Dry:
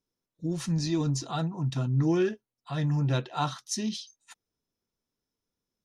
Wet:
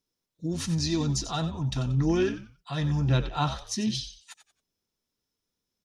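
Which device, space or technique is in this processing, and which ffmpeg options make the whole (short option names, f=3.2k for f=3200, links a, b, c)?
presence and air boost: -filter_complex "[0:a]asettb=1/sr,asplit=3[a][b][c];[a]atrim=end=3.084[d];[b]atrim=start=3.08:end=3.91,asetpts=PTS-STARTPTS,afade=t=in:d=0.004:c=qsin,afade=t=out:st=0.826:d=0.004:c=qsin,bass=f=250:g=5,treble=f=4k:g=-7[e];[c]atrim=start=3.906[f];[d][e]acrossfade=d=0.004:c1=hsin:c2=qsin[g];[g][f]acrossfade=d=0.004:c1=qsin:c2=hsin,asplit=4[h][i][j][k];[i]adelay=91,afreqshift=-85,volume=-11.5dB[l];[j]adelay=182,afreqshift=-170,volume=-22dB[m];[k]adelay=273,afreqshift=-255,volume=-32.4dB[n];[h][l][m][n]amix=inputs=4:normalize=0,equalizer=f=4k:t=o:w=1.9:g=5,highshelf=f=9.1k:g=3.5"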